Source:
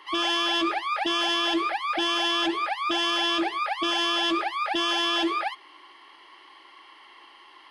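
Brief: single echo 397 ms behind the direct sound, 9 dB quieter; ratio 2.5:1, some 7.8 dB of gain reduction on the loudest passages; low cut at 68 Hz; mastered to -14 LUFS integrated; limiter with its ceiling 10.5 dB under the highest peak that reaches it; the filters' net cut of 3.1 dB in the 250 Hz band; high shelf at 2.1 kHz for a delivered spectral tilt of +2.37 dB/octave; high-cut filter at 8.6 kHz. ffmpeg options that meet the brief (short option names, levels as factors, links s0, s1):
-af "highpass=68,lowpass=8600,equalizer=f=250:t=o:g=-5,highshelf=f=2100:g=-6,acompressor=threshold=0.0141:ratio=2.5,alimiter=level_in=4.22:limit=0.0631:level=0:latency=1,volume=0.237,aecho=1:1:397:0.355,volume=28.2"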